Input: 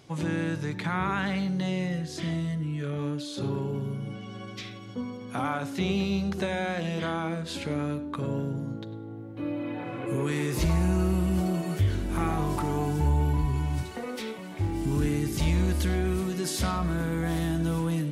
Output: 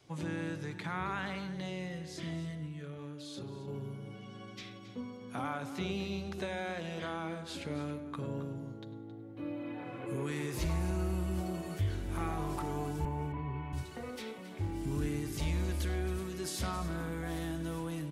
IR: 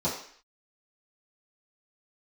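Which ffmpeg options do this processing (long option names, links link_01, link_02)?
-filter_complex "[0:a]adynamicequalizer=threshold=0.01:dfrequency=200:dqfactor=1.9:tfrequency=200:tqfactor=1.9:attack=5:release=100:ratio=0.375:range=3:mode=cutabove:tftype=bell,asettb=1/sr,asplit=3[link_01][link_02][link_03];[link_01]atrim=end=2.664[link_04];[link_02]atrim=start=2.66:end=3.68,asetpts=PTS-STARTPTS,afade=type=in:duration=0.004:curve=qsin,afade=type=out:start_time=1.016:duration=0.004:curve=qsin,acompressor=threshold=-33dB:ratio=6[link_05];[link_03]atrim=start=3.676[link_06];[link_04][link_05]acrossfade=duration=0.004:curve1=hsin:curve2=qsin[link_07];[link_07][link_06]acrossfade=duration=0.004:curve1=qsin:curve2=hsin,asettb=1/sr,asplit=3[link_08][link_09][link_10];[link_08]atrim=end=13.054[link_11];[link_09]atrim=start=13.05:end=13.73,asetpts=PTS-STARTPTS,afade=type=in:duration=0.004:curve=qsin,afade=type=out:start_time=0.676:duration=0.004:curve=qsin,highpass=frequency=100:width=0.5412,highpass=frequency=100:width=1.3066,equalizer=frequency=1100:width_type=q:width=4:gain=3,equalizer=frequency=1500:width_type=q:width=4:gain=-3,equalizer=frequency=2200:width_type=q:width=4:gain=4,lowpass=frequency=2700:width=0.5412,lowpass=frequency=2700:width=1.3066[link_12];[link_10]atrim=start=13.726[link_13];[link_11][link_12]acrossfade=duration=0.004:curve1=hsin:curve2=qsin[link_14];[link_14][link_13]acrossfade=duration=0.004:curve1=qsin:curve2=hsin,aecho=1:1:270:0.211,volume=-7.5dB"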